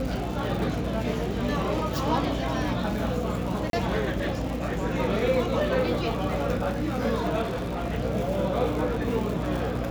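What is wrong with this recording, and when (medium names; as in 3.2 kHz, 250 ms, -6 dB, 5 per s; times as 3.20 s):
crackle 130 per s -32 dBFS
hum 60 Hz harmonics 5 -32 dBFS
3.70–3.73 s: dropout 32 ms
7.42–7.84 s: clipped -26.5 dBFS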